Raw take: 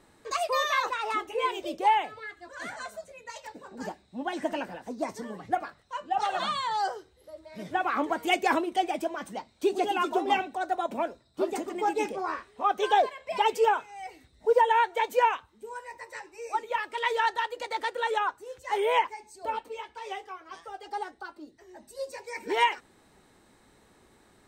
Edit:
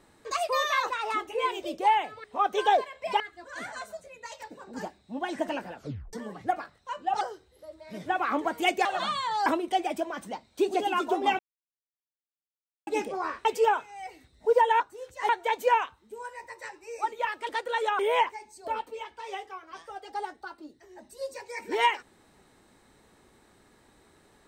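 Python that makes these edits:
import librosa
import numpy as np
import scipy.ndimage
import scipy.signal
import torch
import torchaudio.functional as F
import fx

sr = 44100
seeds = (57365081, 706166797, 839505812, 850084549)

y = fx.edit(x, sr, fx.tape_stop(start_s=4.77, length_s=0.4),
    fx.move(start_s=6.25, length_s=0.61, to_s=8.5),
    fx.silence(start_s=10.43, length_s=1.48),
    fx.move(start_s=12.49, length_s=0.96, to_s=2.24),
    fx.cut(start_s=17.0, length_s=0.78),
    fx.move(start_s=18.28, length_s=0.49, to_s=14.8), tone=tone)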